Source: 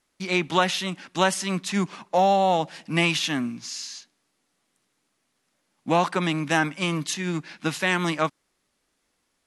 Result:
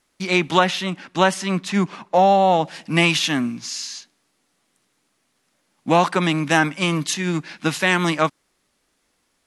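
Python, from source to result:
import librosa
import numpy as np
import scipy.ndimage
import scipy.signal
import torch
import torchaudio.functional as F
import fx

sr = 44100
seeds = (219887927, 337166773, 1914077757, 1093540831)

y = fx.high_shelf(x, sr, hz=4500.0, db=-8.5, at=(0.59, 2.65))
y = y * librosa.db_to_amplitude(5.0)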